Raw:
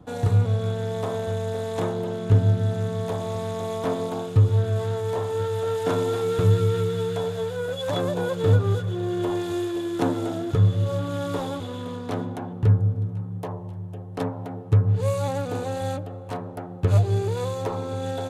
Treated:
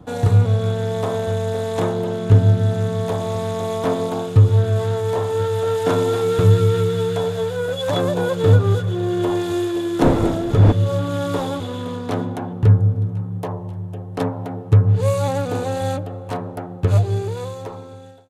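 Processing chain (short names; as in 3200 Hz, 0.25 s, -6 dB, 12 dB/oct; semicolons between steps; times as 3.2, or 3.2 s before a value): ending faded out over 1.81 s; 10–10.71 wind noise 380 Hz -24 dBFS; gain +5.5 dB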